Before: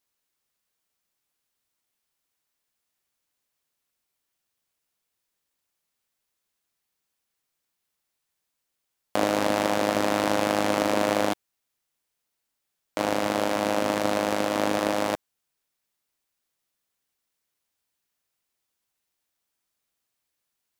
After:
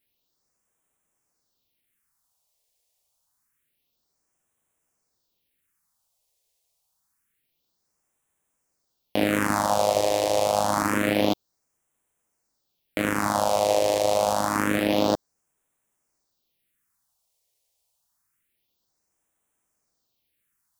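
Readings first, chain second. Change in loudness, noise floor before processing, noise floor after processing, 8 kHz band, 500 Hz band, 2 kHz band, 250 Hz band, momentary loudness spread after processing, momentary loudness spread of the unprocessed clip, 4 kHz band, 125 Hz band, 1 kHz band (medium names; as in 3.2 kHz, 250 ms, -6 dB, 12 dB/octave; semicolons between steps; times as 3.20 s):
+1.5 dB, -81 dBFS, -77 dBFS, +4.0 dB, +2.0 dB, +0.5 dB, +1.0 dB, 5 LU, 6 LU, +1.0 dB, +3.5 dB, +2.0 dB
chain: phase shifter stages 4, 0.27 Hz, lowest notch 230–4500 Hz; loudness maximiser +13.5 dB; trim -7 dB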